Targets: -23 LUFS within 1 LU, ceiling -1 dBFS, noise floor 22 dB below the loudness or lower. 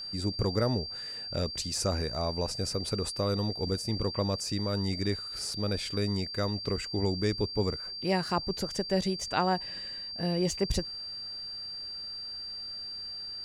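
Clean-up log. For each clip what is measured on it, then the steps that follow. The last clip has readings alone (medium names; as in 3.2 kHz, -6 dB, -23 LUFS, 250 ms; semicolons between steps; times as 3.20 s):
steady tone 4.7 kHz; tone level -37 dBFS; loudness -31.5 LUFS; peak level -14.5 dBFS; loudness target -23.0 LUFS
-> band-stop 4.7 kHz, Q 30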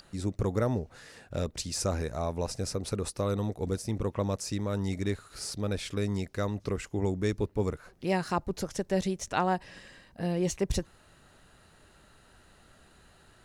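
steady tone not found; loudness -32.0 LUFS; peak level -14.5 dBFS; loudness target -23.0 LUFS
-> trim +9 dB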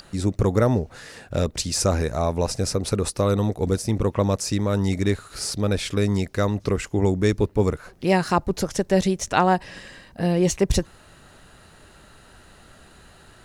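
loudness -23.0 LUFS; peak level -5.5 dBFS; noise floor -51 dBFS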